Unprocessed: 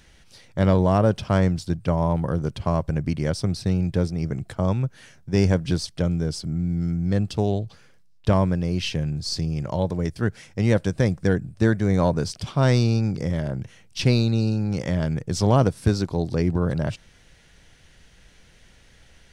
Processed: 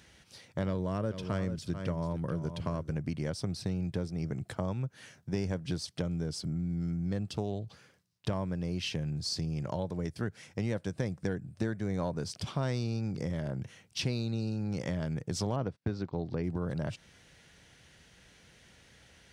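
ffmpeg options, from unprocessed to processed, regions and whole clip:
-filter_complex "[0:a]asettb=1/sr,asplit=3[a][b][c];[a]atrim=end=0.674[d];[b]atrim=start=0.67:end=2.93,asetpts=PTS-STARTPTS,afade=t=in:d=0.004:c=qsin,afade=t=out:st=2.256:d=0.004:c=qsin,equalizer=f=790:w=3.8:g=-10.5,aecho=1:1:441:0.266,atrim=end_sample=99666[e];[c]atrim=start=2.926[f];[d][e]acrossfade=d=0.004:c1=hsin:c2=qsin[g];[g][f]acrossfade=d=0.004:c1=qsin:c2=hsin,asettb=1/sr,asplit=3[h][i][j];[h]atrim=end=15.564[k];[i]atrim=start=15.56:end=16.44,asetpts=PTS-STARTPTS,afade=t=in:d=0.004:c=qsin,afade=t=out:st=0.876:d=0.004:c=qsin,agate=range=-33dB:threshold=-37dB:ratio=16:release=100:detection=peak,lowpass=3.2k[l];[j]atrim=start=16.436[m];[k][l]acrossfade=d=0.004:c1=hsin:c2=qsin[n];[n][m]acrossfade=d=0.004:c1=qsin:c2=hsin,highpass=81,acompressor=threshold=-29dB:ratio=3,volume=-3dB"

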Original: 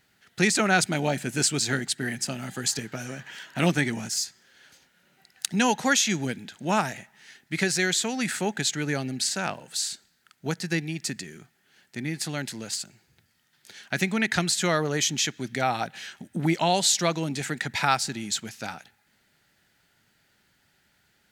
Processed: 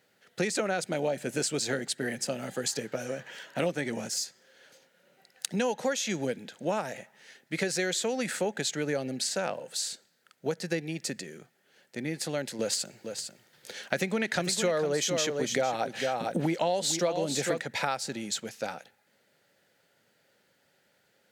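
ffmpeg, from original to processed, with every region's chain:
-filter_complex "[0:a]asettb=1/sr,asplit=3[a][b][c];[a]atrim=end=12.594[d];[b]atrim=start=12.59:end=17.61,asetpts=PTS-STARTPTS,afade=t=in:d=0.004:c=qsin,afade=t=out:st=5.016:d=0.004:c=qsin,acontrast=82,aecho=1:1:453:0.335,atrim=end_sample=221382[e];[c]atrim=start=17.606[f];[d][e]acrossfade=d=0.004:c1=hsin:c2=qsin[g];[g][f]acrossfade=d=0.004:c1=qsin:c2=hsin,highpass=130,equalizer=f=520:w=2.4:g=14.5,acompressor=threshold=-22dB:ratio=6,volume=-3.5dB"

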